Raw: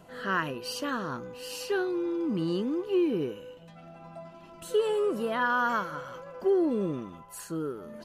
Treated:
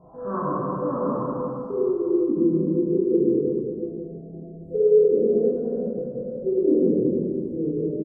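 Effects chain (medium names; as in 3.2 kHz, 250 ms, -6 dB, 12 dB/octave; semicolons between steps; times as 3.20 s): random holes in the spectrogram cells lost 24%; delay 187 ms -13.5 dB; dynamic bell 850 Hz, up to -4 dB, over -42 dBFS, Q 2.2; elliptic low-pass 1.1 kHz, stop band 50 dB, from 1.46 s 530 Hz; reverberation RT60 2.9 s, pre-delay 8 ms, DRR -10 dB; endings held to a fixed fall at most 140 dB/s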